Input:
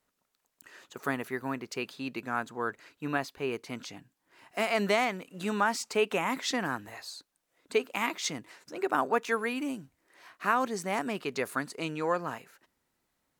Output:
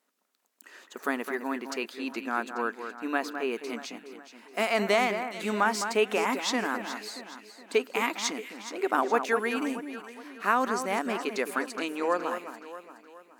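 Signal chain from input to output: brick-wall FIR high-pass 190 Hz; echo whose repeats swap between lows and highs 210 ms, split 2.2 kHz, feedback 64%, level -8 dB; trim +2 dB

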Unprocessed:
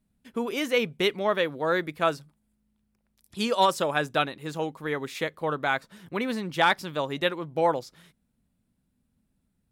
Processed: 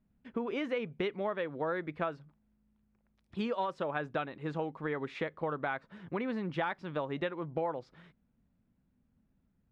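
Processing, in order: low-pass 2.1 kHz 12 dB/octave; compression 6:1, threshold -31 dBFS, peak gain reduction 13.5 dB

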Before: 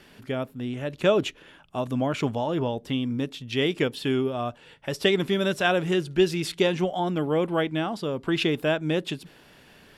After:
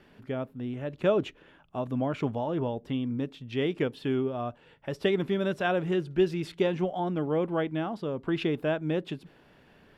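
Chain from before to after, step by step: peaking EQ 9.7 kHz -14 dB 2.7 oct; trim -3 dB

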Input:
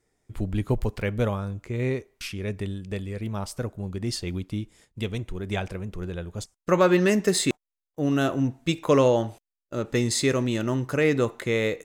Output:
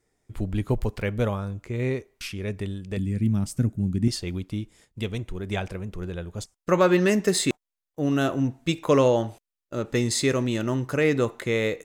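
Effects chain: 2.97–4.08 s: graphic EQ 125/250/500/1000/4000/8000 Hz +8/+11/-9/-10/-5/+4 dB

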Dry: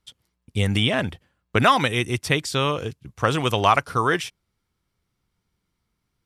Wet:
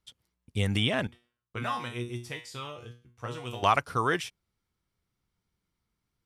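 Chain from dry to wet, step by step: 1.07–3.63 s: feedback comb 120 Hz, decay 0.36 s, harmonics all, mix 90%; trim -6 dB

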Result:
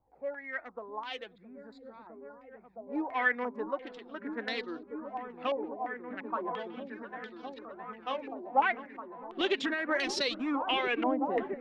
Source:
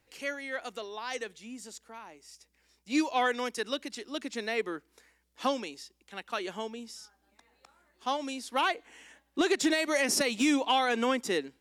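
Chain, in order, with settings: local Wiener filter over 15 samples; delay with an opening low-pass 663 ms, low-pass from 200 Hz, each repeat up 1 oct, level 0 dB; flange 0.38 Hz, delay 0.8 ms, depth 5.4 ms, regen +35%; step-sequenced low-pass 2.9 Hz 800–4000 Hz; trim -1.5 dB

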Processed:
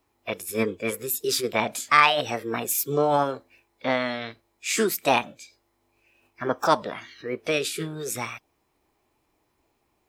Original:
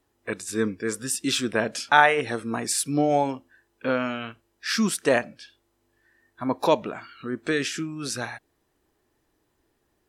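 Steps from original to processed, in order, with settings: Chebyshev shaper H 5 -31 dB, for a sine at -1 dBFS; formant shift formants +6 st; trim -1 dB

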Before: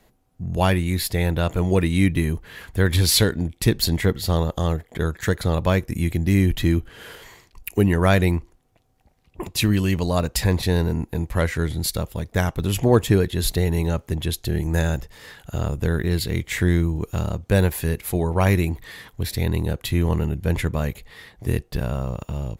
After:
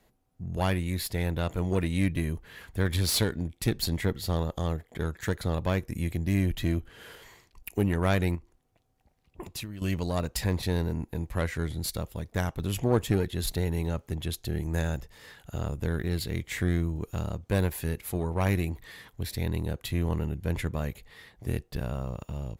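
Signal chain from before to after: single-diode clipper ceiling -15.5 dBFS; 8.35–9.82 s: compression 12:1, threshold -28 dBFS, peak gain reduction 14 dB; trim -7 dB

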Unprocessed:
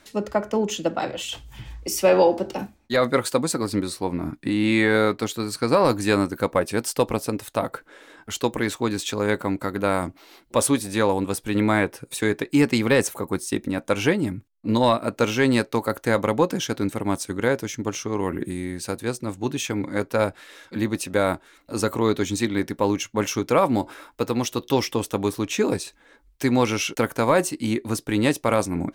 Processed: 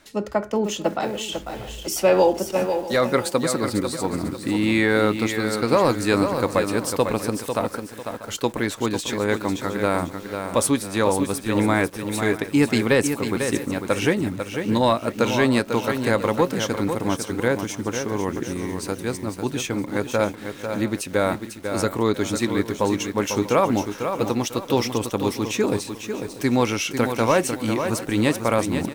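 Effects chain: on a send: delay 640 ms -17 dB; on the sum: bit-crushed delay 497 ms, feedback 35%, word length 7-bit, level -7 dB

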